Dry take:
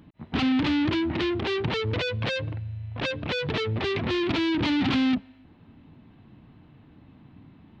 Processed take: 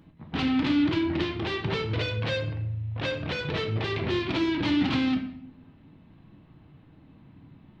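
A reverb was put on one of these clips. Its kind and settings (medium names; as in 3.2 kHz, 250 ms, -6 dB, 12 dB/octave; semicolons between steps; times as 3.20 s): simulated room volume 140 m³, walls mixed, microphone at 0.62 m; trim -3.5 dB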